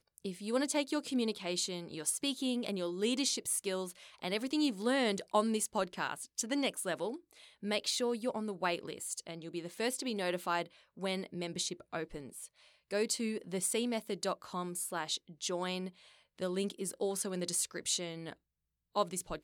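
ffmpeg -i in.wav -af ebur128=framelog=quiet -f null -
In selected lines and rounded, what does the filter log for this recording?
Integrated loudness:
  I:         -35.6 LUFS
  Threshold: -45.9 LUFS
Loudness range:
  LRA:         4.1 LU
  Threshold: -55.9 LUFS
  LRA low:   -37.9 LUFS
  LRA high:  -33.8 LUFS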